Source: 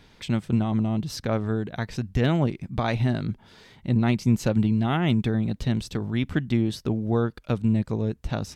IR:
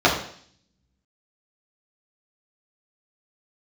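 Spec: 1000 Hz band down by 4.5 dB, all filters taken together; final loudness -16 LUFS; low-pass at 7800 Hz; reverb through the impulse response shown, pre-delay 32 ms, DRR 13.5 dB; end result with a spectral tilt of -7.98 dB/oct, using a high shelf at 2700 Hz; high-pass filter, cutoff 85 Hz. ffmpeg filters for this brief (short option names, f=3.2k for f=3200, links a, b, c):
-filter_complex "[0:a]highpass=85,lowpass=7.8k,equalizer=f=1k:t=o:g=-6,highshelf=f=2.7k:g=-4,asplit=2[a][b];[1:a]atrim=start_sample=2205,adelay=32[c];[b][c]afir=irnorm=-1:irlink=0,volume=-35.5dB[d];[a][d]amix=inputs=2:normalize=0,volume=10dB"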